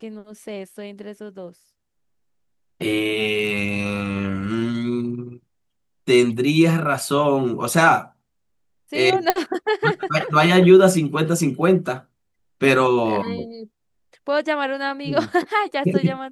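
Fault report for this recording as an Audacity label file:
9.300000	9.300000	pop -3 dBFS

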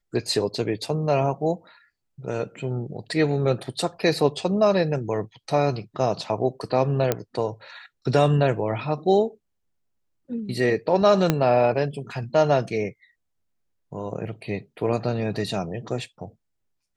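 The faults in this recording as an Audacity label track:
7.120000	7.120000	pop -7 dBFS
11.300000	11.300000	pop -5 dBFS

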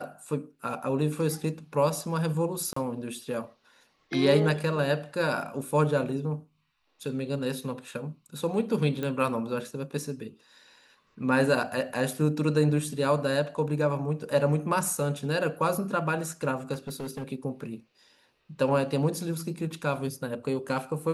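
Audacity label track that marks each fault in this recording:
2.730000	2.760000	dropout 34 ms
9.030000	9.030000	pop -19 dBFS
16.730000	17.240000	clipped -31 dBFS

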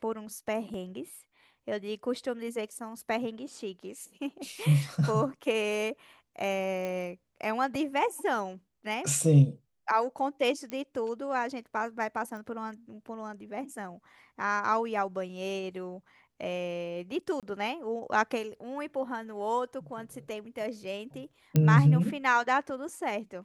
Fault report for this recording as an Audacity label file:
0.740000	0.740000	dropout 2.3 ms
6.850000	6.850000	pop -22 dBFS
10.700000	10.700000	pop -23 dBFS
12.370000	12.370000	pop
17.400000	17.430000	dropout 27 ms
21.560000	21.560000	pop -12 dBFS

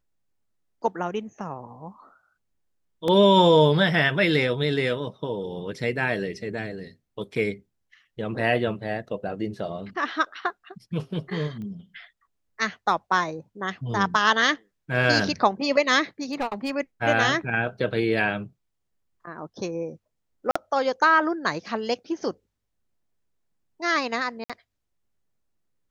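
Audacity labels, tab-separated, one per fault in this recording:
3.080000	3.080000	dropout 2 ms
11.620000	11.620000	pop -29 dBFS
16.230000	16.710000	clipped -22 dBFS
20.510000	20.550000	dropout 45 ms
24.440000	24.500000	dropout 56 ms

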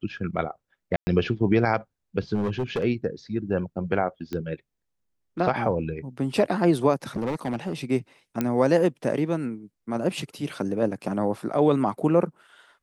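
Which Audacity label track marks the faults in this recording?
0.960000	1.070000	dropout 110 ms
2.340000	2.840000	clipped -22 dBFS
4.330000	4.330000	pop -19 dBFS
7.160000	7.850000	clipped -23 dBFS
8.410000	8.410000	pop -11 dBFS

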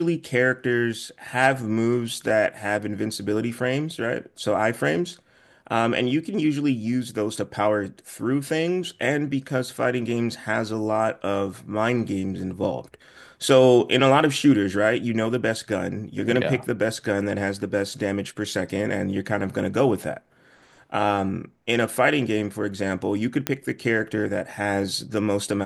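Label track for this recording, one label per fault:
23.470000	23.470000	pop -6 dBFS

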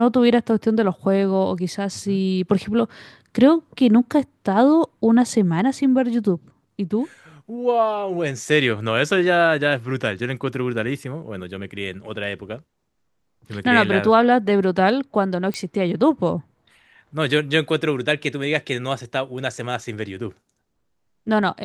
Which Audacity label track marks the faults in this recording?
15.540000	15.540000	pop -14 dBFS

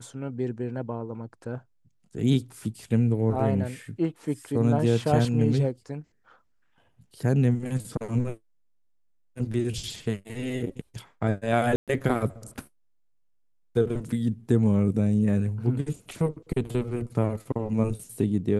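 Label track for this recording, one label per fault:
11.760000	11.880000	dropout 117 ms

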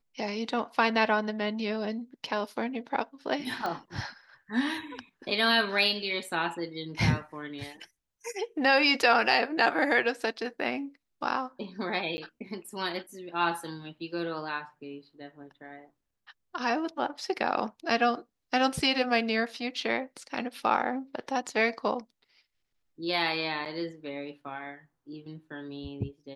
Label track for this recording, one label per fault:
3.660000	3.660000	pop -20 dBFS
12.170000	12.180000	dropout 10 ms
23.650000	23.660000	dropout 7.3 ms

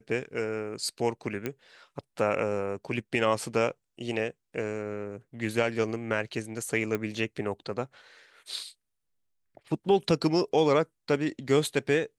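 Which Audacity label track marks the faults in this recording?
1.460000	1.460000	pop -17 dBFS
6.950000	6.950000	pop -17 dBFS

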